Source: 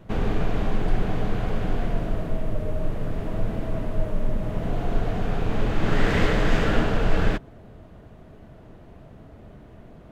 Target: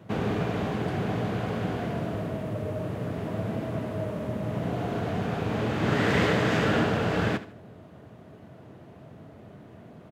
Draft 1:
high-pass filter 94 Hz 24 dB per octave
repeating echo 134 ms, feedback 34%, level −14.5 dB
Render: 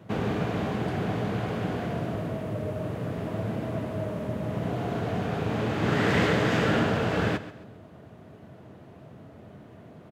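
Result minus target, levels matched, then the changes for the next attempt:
echo 59 ms late
change: repeating echo 75 ms, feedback 34%, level −14.5 dB

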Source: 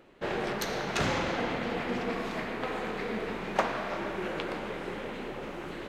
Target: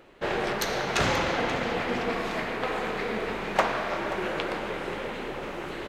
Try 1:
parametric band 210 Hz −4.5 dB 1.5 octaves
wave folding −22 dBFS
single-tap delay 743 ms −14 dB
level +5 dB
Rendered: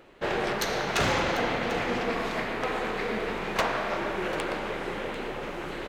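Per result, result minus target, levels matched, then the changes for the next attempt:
wave folding: distortion +14 dB; echo 212 ms late
change: wave folding −14.5 dBFS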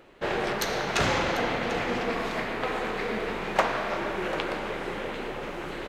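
echo 212 ms late
change: single-tap delay 531 ms −14 dB

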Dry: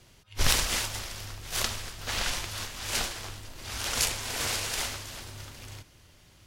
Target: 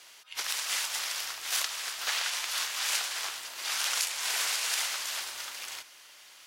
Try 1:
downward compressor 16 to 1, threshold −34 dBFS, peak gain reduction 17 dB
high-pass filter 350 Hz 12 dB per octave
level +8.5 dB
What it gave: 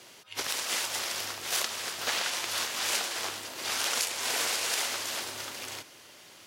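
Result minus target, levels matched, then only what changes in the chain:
250 Hz band +16.0 dB
change: high-pass filter 990 Hz 12 dB per octave

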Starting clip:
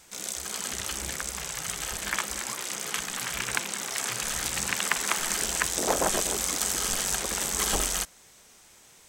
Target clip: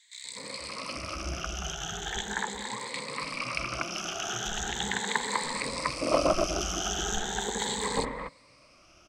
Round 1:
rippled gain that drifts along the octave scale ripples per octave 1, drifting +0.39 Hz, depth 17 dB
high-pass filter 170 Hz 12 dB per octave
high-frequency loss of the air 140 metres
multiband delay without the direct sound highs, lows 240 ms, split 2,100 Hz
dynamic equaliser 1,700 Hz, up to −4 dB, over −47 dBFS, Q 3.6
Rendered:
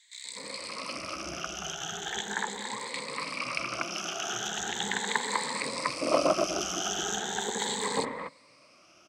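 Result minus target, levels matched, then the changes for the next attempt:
125 Hz band −6.0 dB
remove: high-pass filter 170 Hz 12 dB per octave

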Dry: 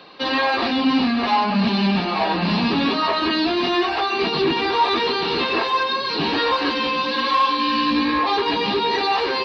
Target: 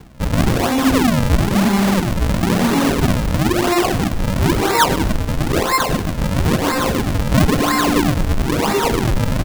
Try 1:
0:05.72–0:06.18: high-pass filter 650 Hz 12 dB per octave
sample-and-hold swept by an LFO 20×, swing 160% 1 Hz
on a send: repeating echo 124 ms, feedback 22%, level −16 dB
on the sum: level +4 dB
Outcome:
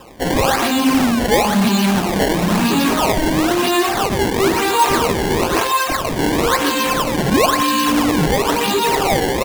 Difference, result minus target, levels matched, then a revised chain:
sample-and-hold swept by an LFO: distortion −9 dB
0:05.72–0:06.18: high-pass filter 650 Hz 12 dB per octave
sample-and-hold swept by an LFO 68×, swing 160% 1 Hz
on a send: repeating echo 124 ms, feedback 22%, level −16 dB
on the sum: level +4 dB

